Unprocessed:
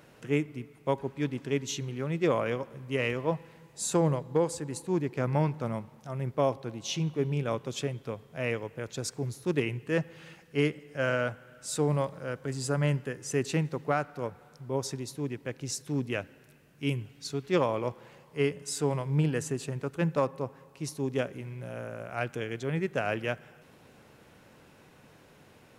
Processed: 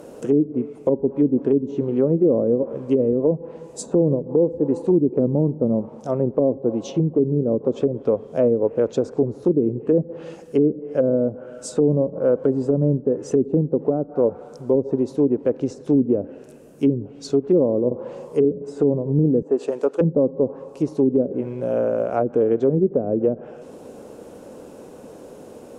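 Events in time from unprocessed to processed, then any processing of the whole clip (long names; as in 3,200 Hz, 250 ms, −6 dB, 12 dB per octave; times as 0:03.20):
0:17.87–0:18.45: double-tracking delay 40 ms −4 dB
0:19.42–0:20.01: high-pass filter 440 Hz
whole clip: treble cut that deepens with the level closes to 310 Hz, closed at −26.5 dBFS; octave-band graphic EQ 125/250/500/2,000/4,000/8,000 Hz −7/+7/+11/−11/−5/+5 dB; boost into a limiter +18 dB; level −8 dB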